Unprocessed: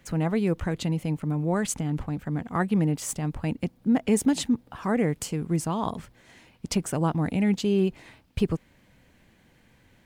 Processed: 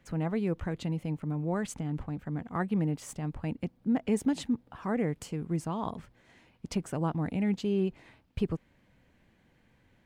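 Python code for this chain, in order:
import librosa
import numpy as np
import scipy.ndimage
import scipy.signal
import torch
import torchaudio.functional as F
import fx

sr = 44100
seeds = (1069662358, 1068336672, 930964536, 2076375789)

y = fx.high_shelf(x, sr, hz=4500.0, db=-9.0)
y = F.gain(torch.from_numpy(y), -5.5).numpy()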